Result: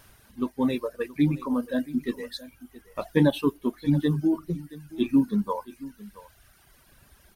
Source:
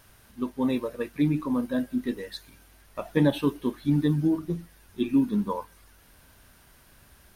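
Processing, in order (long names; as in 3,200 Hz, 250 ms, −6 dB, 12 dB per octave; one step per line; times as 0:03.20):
reverb reduction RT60 1.6 s
single-tap delay 674 ms −18.5 dB
level +2 dB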